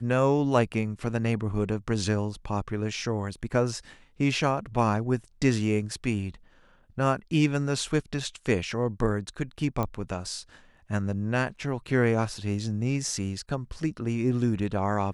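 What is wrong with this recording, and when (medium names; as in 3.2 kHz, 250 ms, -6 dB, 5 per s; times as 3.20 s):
9.83 s: pop -16 dBFS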